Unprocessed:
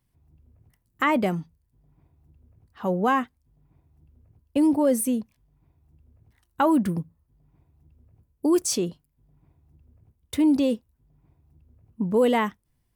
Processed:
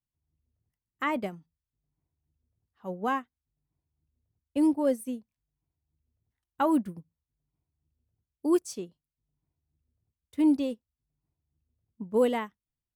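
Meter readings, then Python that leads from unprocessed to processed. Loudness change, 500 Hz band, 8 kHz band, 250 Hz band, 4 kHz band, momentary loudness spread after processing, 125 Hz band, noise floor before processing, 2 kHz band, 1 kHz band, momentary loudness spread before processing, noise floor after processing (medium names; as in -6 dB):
-4.5 dB, -5.0 dB, -14.5 dB, -5.0 dB, -9.5 dB, 17 LU, -14.0 dB, -72 dBFS, -7.5 dB, -6.5 dB, 12 LU, under -85 dBFS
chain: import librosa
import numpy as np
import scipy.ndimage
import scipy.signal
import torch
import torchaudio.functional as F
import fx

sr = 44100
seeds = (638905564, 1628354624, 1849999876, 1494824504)

y = fx.upward_expand(x, sr, threshold_db=-30.0, expansion=2.5)
y = F.gain(torch.from_numpy(y), -2.0).numpy()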